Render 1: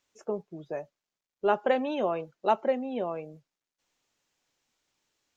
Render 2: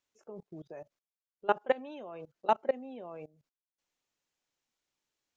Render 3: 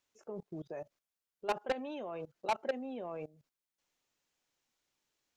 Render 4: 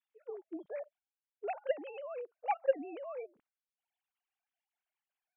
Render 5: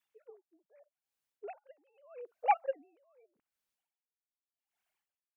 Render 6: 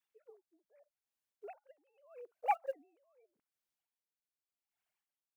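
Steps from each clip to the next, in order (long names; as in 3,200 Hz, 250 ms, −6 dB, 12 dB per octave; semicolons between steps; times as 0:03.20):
output level in coarse steps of 22 dB
soft clipping −29.5 dBFS, distortion −4 dB; level +3 dB
three sine waves on the formant tracks; level +1 dB
tremolo with a sine in dB 0.82 Hz, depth 35 dB; level +7 dB
one scale factor per block 7 bits; level −4.5 dB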